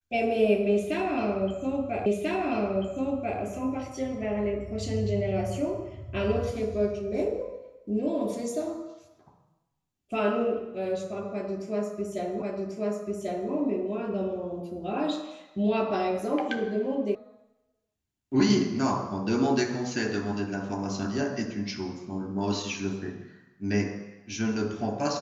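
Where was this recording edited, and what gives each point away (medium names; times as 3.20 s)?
2.06 s: repeat of the last 1.34 s
12.42 s: repeat of the last 1.09 s
17.15 s: sound stops dead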